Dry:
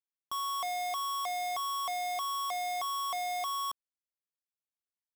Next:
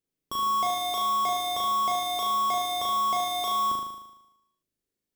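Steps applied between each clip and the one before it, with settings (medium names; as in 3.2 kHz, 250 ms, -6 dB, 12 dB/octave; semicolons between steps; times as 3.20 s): resonant low shelf 570 Hz +12 dB, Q 1.5; flutter echo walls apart 6.5 m, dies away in 0.94 s; trim +3.5 dB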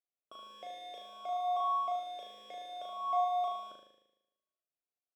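talking filter a-e 0.61 Hz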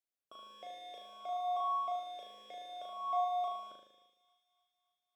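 feedback echo behind a high-pass 286 ms, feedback 61%, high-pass 2.4 kHz, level -16 dB; trim -2.5 dB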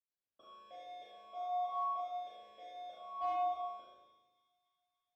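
hard clipper -29 dBFS, distortion -22 dB; reverberation RT60 0.75 s, pre-delay 77 ms; trim +6 dB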